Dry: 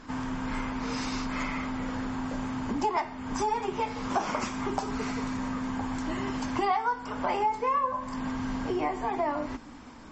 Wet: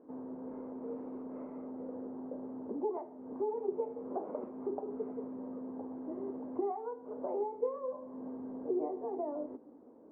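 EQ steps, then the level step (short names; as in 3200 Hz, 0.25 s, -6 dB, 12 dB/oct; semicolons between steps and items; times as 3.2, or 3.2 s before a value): ladder low-pass 580 Hz, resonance 45%; differentiator; bell 360 Hz +11 dB 2.3 oct; +16.5 dB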